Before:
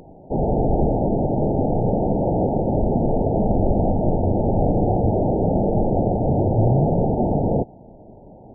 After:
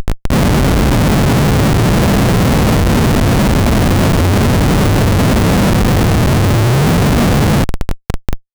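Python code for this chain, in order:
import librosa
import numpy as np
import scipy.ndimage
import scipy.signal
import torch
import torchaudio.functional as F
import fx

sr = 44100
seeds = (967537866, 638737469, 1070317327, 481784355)

p1 = fx.low_shelf(x, sr, hz=78.0, db=8.5)
p2 = fx.rider(p1, sr, range_db=3, speed_s=0.5)
p3 = p1 + F.gain(torch.from_numpy(p2), 3.0).numpy()
p4 = scipy.signal.sosfilt(scipy.signal.butter(2, 48.0, 'highpass', fs=sr, output='sos'), p3)
p5 = fx.band_shelf(p4, sr, hz=540.0, db=-13.0, octaves=1.7)
p6 = fx.schmitt(p5, sr, flips_db=-28.5)
y = F.gain(torch.from_numpy(p6), 2.5).numpy()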